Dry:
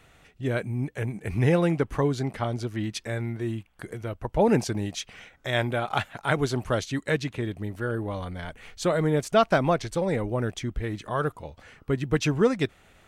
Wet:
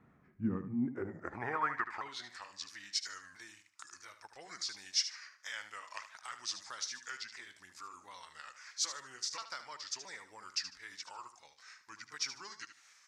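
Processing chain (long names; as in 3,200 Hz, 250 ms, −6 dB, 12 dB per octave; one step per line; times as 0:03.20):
pitch shifter swept by a sawtooth −5 semitones, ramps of 670 ms
flat-topped bell 1,400 Hz +11.5 dB
downward compressor 2.5 to 1, threshold −28 dBFS, peak gain reduction 11.5 dB
high shelf with overshoot 3,700 Hz +6 dB, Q 1.5
band-pass filter sweep 210 Hz → 5,300 Hz, 0:00.72–0:02.39
repeating echo 75 ms, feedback 26%, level −11 dB
level +2.5 dB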